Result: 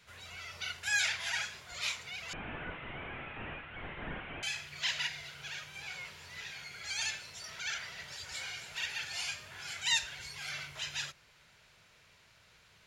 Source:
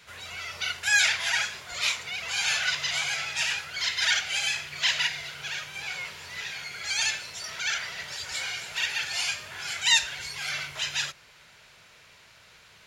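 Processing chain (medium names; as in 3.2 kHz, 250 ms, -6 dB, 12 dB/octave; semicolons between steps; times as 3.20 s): 2.33–4.43 s: one-bit delta coder 16 kbps, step -35.5 dBFS; bass shelf 220 Hz +6 dB; trim -9 dB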